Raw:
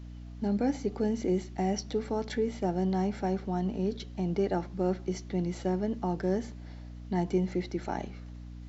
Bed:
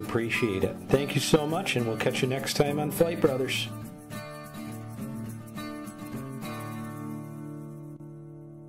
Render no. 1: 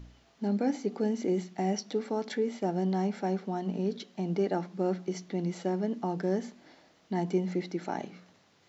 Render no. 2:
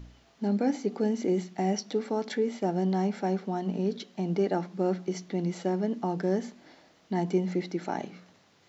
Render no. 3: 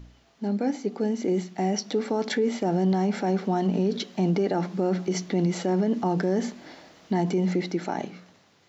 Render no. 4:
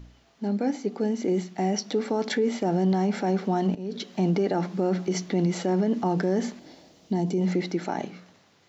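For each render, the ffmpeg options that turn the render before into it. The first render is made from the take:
-af "bandreject=f=60:t=h:w=4,bandreject=f=120:t=h:w=4,bandreject=f=180:t=h:w=4,bandreject=f=240:t=h:w=4,bandreject=f=300:t=h:w=4"
-af "volume=1.26"
-af "dynaudnorm=f=540:g=7:m=2.99,alimiter=limit=0.15:level=0:latency=1:release=46"
-filter_complex "[0:a]asettb=1/sr,asplit=3[s0][s1][s2];[s0]atrim=end=6.594[s3];[s1]atrim=start=6.59:end=7.41,asetpts=PTS-STARTPTS,afade=t=in:d=0.004:c=qsin,afade=t=out:st=0.816:d=0.004:c=qsin,equalizer=f=1500:t=o:w=1.8:g=-11.5[s4];[s2]atrim=start=7.406[s5];[s3][s4]acrossfade=d=0.004:c1=hsin:c2=qsin[s6];[s6][s5]acrossfade=d=0.004:c1=qsin:c2=hsin,asplit=2[s7][s8];[s7]atrim=end=3.75,asetpts=PTS-STARTPTS,afade=t=out:st=3.746:d=0.004:c=hsin:silence=0.125893[s9];[s8]atrim=start=3.75,asetpts=PTS-STARTPTS,afade=t=in:d=0.4:silence=0.125893[s10];[s9][s10]concat=n=2:v=0:a=1"

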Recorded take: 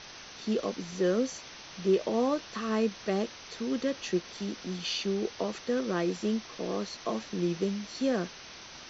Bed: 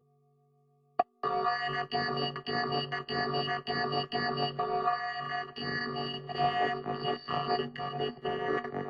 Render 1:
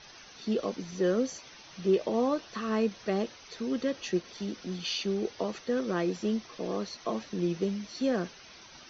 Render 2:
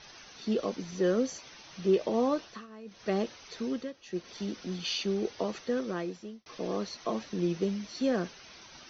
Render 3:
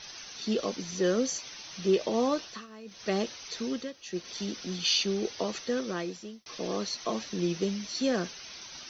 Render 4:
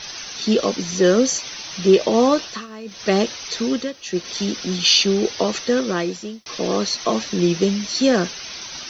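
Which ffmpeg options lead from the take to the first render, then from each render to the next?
-af "afftdn=nr=9:nf=-47"
-filter_complex "[0:a]asplit=6[s0][s1][s2][s3][s4][s5];[s0]atrim=end=2.67,asetpts=PTS-STARTPTS,afade=t=out:st=2.42:d=0.25:silence=0.105925[s6];[s1]atrim=start=2.67:end=2.85,asetpts=PTS-STARTPTS,volume=0.106[s7];[s2]atrim=start=2.85:end=3.93,asetpts=PTS-STARTPTS,afade=t=in:d=0.25:silence=0.105925,afade=t=out:st=0.8:d=0.28:silence=0.199526[s8];[s3]atrim=start=3.93:end=4.05,asetpts=PTS-STARTPTS,volume=0.2[s9];[s4]atrim=start=4.05:end=6.46,asetpts=PTS-STARTPTS,afade=t=in:d=0.28:silence=0.199526,afade=t=out:st=1.59:d=0.82[s10];[s5]atrim=start=6.46,asetpts=PTS-STARTPTS,afade=t=in:d=0.004:c=hsin[s11];[s6][s7][s8][s9][s10][s11]concat=n=6:v=0:a=1"
-af "highshelf=f=3000:g=11.5"
-af "volume=3.76"

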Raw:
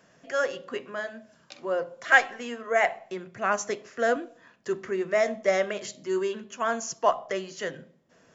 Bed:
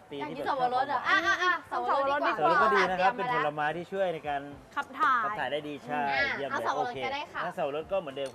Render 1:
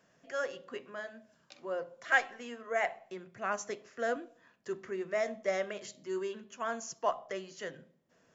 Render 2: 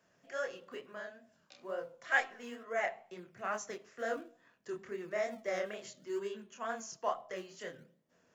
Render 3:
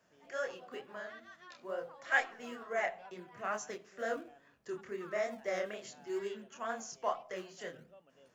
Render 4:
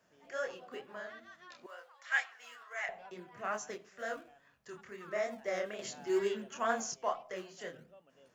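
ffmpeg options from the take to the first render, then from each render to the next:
-af "volume=0.376"
-filter_complex "[0:a]flanger=delay=22.5:depth=7.2:speed=2.2,acrossover=split=220[s0][s1];[s0]acrusher=samples=26:mix=1:aa=0.000001:lfo=1:lforange=41.6:lforate=0.58[s2];[s2][s1]amix=inputs=2:normalize=0"
-filter_complex "[1:a]volume=0.0355[s0];[0:a][s0]amix=inputs=2:normalize=0"
-filter_complex "[0:a]asettb=1/sr,asplit=3[s0][s1][s2];[s0]atrim=end=1.664[s3];[s1]atrim=start=1.66:end=2.89,asetpts=PTS-STARTPTS,afade=t=in:d=0.004:c=qsin,afade=t=out:st=1.226:d=0.004:c=qsin,highpass=1300[s4];[s2]atrim=start=2.886[s5];[s3][s4]acrossfade=d=0.004:c1=hsin:c2=qsin[s6];[s6][s5]acrossfade=d=0.004:c1=qsin:c2=hsin,asettb=1/sr,asplit=3[s7][s8][s9];[s7]atrim=end=3.894[s10];[s8]atrim=start=3.89:end=5.08,asetpts=PTS-STARTPTS,afade=t=in:d=0.004:c=qsin,afade=t=out:st=1.186:d=0.004:c=qsin,equalizer=f=340:w=1.1:g=-9[s11];[s9]atrim=start=5.076[s12];[s10][s11]acrossfade=d=0.004:c1=hsin:c2=qsin[s13];[s13][s12]acrossfade=d=0.004:c1=qsin:c2=hsin,asplit=3[s14][s15][s16];[s14]atrim=end=5.792[s17];[s15]atrim=start=5.788:end=6.942,asetpts=PTS-STARTPTS,volume=2.11[s18];[s16]atrim=start=6.938[s19];[s17][s18]acrossfade=d=0.004:c1=hsin:c2=hsin[s20];[s20][s19]acrossfade=d=0.004:c1=hsin:c2=hsin"

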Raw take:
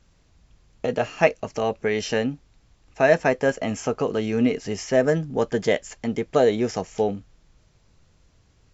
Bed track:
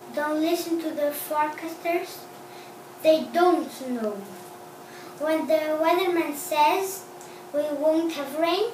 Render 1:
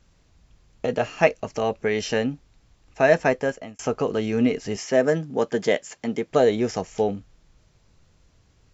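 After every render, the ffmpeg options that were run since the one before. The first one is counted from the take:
-filter_complex "[0:a]asettb=1/sr,asplit=3[s0][s1][s2];[s0]atrim=end=4.764[s3];[s1]atrim=start=4.76:end=6.31,asetpts=PTS-STARTPTS,afade=t=in:d=0.004:c=qsin,afade=t=out:st=1.546:d=0.004:c=qsin,highpass=160[s4];[s2]atrim=start=6.306[s5];[s3][s4]acrossfade=d=0.004:c1=hsin:c2=qsin[s6];[s6][s5]acrossfade=d=0.004:c1=qsin:c2=hsin,asplit=2[s7][s8];[s7]atrim=end=3.79,asetpts=PTS-STARTPTS,afade=t=out:st=3.31:d=0.48[s9];[s8]atrim=start=3.79,asetpts=PTS-STARTPTS,afade=t=in:d=0.004:c=hsin[s10];[s9][s10]concat=n=2:v=0:a=1"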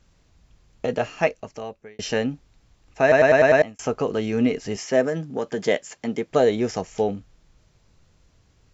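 -filter_complex "[0:a]asettb=1/sr,asplit=3[s0][s1][s2];[s0]atrim=end=5.054[s3];[s1]atrim=start=5.05:end=5.58,asetpts=PTS-STARTPTS,afade=t=in:d=0.004:c=qsin,afade=t=out:st=0.526:d=0.004:c=qsin,acompressor=threshold=0.0794:ratio=2.5:attack=3.2:release=140:knee=1:detection=peak[s4];[s2]atrim=start=5.576[s5];[s3][s4]acrossfade=d=0.004:c1=hsin:c2=qsin[s6];[s6][s5]acrossfade=d=0.004:c1=qsin:c2=hsin,asplit=8[s7][s8][s9][s10][s11][s12][s13][s14];[s7]atrim=end=1.99,asetpts=PTS-STARTPTS,afade=t=out:st=0.95:d=1.04[s15];[s8]atrim=start=1.99:end=3.122,asetpts=PTS-STARTPTS,afade=t=in:d=0.004:c=hsin[s16];[s9]atrim=start=3.018:end=3.122[s17];[s10]atrim=start=3.018:end=3.122[s18];[s11]atrim=start=3.018:end=3.122[s19];[s12]atrim=start=3.018:end=3.122[s20];[s13]atrim=start=3.018:end=3.122[s21];[s14]atrim=start=3.618[s22];[s15][s16]concat=n=2:v=0:a=1[s23];[s23][s17]acrossfade=d=0.004:c1=hsin:c2=hsin[s24];[s24][s18]acrossfade=d=0.004:c1=hsin:c2=hsin[s25];[s25][s19]acrossfade=d=0.004:c1=hsin:c2=hsin[s26];[s26][s20]acrossfade=d=0.004:c1=hsin:c2=hsin[s27];[s27][s21]acrossfade=d=0.004:c1=hsin:c2=hsin[s28];[s28][s22]acrossfade=d=0.004:c1=hsin:c2=hsin"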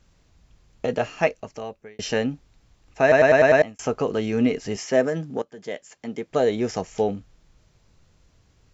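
-filter_complex "[0:a]asplit=2[s0][s1];[s0]atrim=end=5.42,asetpts=PTS-STARTPTS,afade=t=out:st=5.416:d=0.004:c=hsin:silence=0.1[s2];[s1]atrim=start=5.42,asetpts=PTS-STARTPTS,afade=t=in:d=1.39:silence=0.1[s3];[s2][s3]concat=n=2:v=0:a=1"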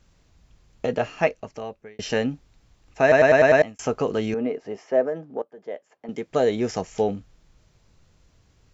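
-filter_complex "[0:a]asettb=1/sr,asplit=3[s0][s1][s2];[s0]atrim=end=0.884[s3];[s1]atrim=start=0.88:end=2.1,asetpts=PTS-STARTPTS,afade=t=in:d=0.004:c=qsin,afade=t=out:st=1.216:d=0.004:c=qsin,highshelf=f=6500:g=-7.5[s4];[s2]atrim=start=2.096[s5];[s3][s4]acrossfade=d=0.004:c1=hsin:c2=qsin[s6];[s6][s5]acrossfade=d=0.004:c1=qsin:c2=hsin,asettb=1/sr,asplit=3[s7][s8][s9];[s7]atrim=end=4.344[s10];[s8]atrim=start=4.34:end=6.09,asetpts=PTS-STARTPTS,afade=t=in:d=0.004:c=qsin,afade=t=out:st=1.746:d=0.004:c=qsin,bandpass=f=620:t=q:w=1[s11];[s9]atrim=start=6.086[s12];[s10][s11]acrossfade=d=0.004:c1=hsin:c2=qsin[s13];[s13][s12]acrossfade=d=0.004:c1=qsin:c2=hsin"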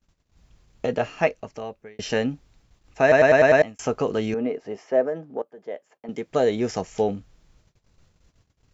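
-af "agate=range=0.0708:threshold=0.00141:ratio=16:detection=peak"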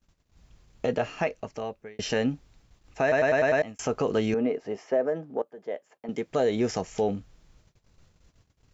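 -af "alimiter=limit=0.178:level=0:latency=1:release=91"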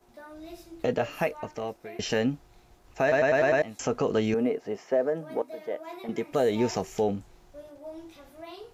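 -filter_complex "[1:a]volume=0.1[s0];[0:a][s0]amix=inputs=2:normalize=0"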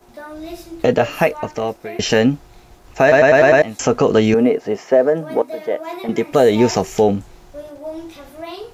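-af "volume=3.98"

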